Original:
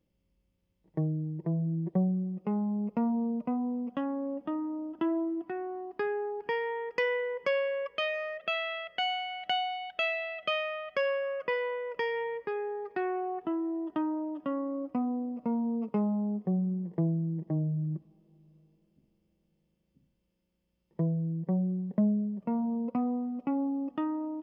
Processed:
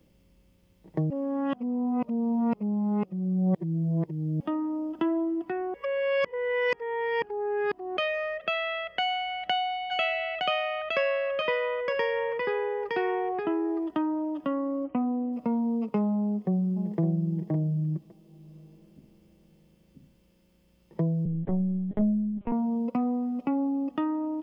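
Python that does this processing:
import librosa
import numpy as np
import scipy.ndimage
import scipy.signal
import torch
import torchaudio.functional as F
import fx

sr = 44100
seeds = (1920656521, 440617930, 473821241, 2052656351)

y = fx.echo_single(x, sr, ms=914, db=-4.5, at=(9.9, 13.86), fade=0.02)
y = fx.brickwall_lowpass(y, sr, high_hz=3200.0, at=(14.84, 15.33))
y = fx.echo_throw(y, sr, start_s=16.2, length_s=0.79, ms=560, feedback_pct=15, wet_db=-8.0)
y = fx.lpc_vocoder(y, sr, seeds[0], excitation='pitch_kept', order=10, at=(21.25, 22.52))
y = fx.edit(y, sr, fx.reverse_span(start_s=1.1, length_s=3.3),
    fx.reverse_span(start_s=5.74, length_s=2.23), tone=tone)
y = fx.band_squash(y, sr, depth_pct=40)
y = F.gain(torch.from_numpy(y), 3.0).numpy()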